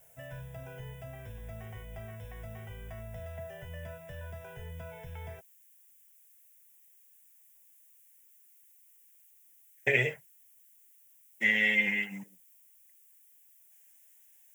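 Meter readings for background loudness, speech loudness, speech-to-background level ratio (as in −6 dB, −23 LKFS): −45.0 LKFS, −27.5 LKFS, 17.5 dB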